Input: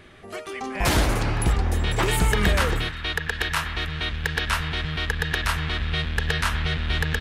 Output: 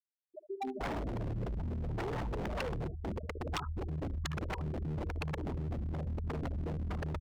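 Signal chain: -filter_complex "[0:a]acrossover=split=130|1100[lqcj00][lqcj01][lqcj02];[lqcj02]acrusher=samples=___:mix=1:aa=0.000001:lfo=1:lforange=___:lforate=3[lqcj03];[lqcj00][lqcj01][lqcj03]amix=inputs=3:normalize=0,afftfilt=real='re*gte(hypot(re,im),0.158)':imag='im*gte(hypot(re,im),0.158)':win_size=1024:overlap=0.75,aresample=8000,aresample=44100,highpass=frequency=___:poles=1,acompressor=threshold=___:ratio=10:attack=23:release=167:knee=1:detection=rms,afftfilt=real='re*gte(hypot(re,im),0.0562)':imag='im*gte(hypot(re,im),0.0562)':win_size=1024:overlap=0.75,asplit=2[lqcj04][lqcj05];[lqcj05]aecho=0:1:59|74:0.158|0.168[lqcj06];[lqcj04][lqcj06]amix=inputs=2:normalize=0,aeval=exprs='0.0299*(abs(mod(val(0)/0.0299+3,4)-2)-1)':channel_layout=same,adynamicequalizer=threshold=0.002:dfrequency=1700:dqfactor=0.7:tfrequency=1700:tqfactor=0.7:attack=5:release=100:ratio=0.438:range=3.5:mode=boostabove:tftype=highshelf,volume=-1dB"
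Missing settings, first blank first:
30, 30, 85, -29dB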